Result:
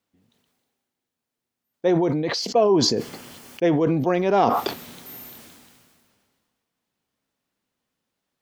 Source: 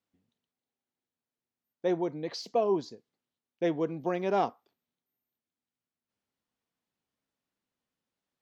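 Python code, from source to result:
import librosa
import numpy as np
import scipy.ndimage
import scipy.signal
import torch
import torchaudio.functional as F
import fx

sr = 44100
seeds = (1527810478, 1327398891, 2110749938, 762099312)

y = fx.notch(x, sr, hz=3800.0, q=8.9, at=(2.39, 3.81))
y = fx.sustainer(y, sr, db_per_s=29.0)
y = F.gain(torch.from_numpy(y), 8.0).numpy()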